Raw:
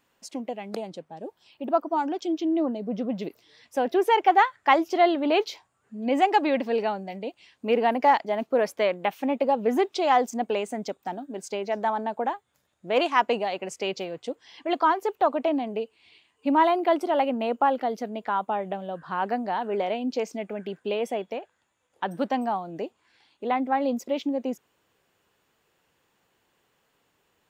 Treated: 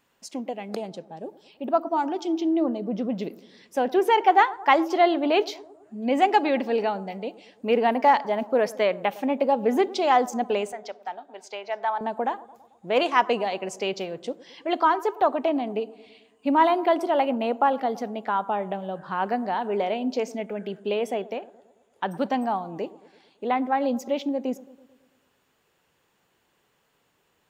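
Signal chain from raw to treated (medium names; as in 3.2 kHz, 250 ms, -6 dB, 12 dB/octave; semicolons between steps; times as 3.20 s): 10.72–12.01 s: three-band isolator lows -23 dB, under 550 Hz, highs -15 dB, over 5.3 kHz; bucket-brigade echo 110 ms, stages 1024, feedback 57%, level -19 dB; on a send at -20.5 dB: reverberation RT60 0.35 s, pre-delay 3 ms; on the sum: trim +1 dB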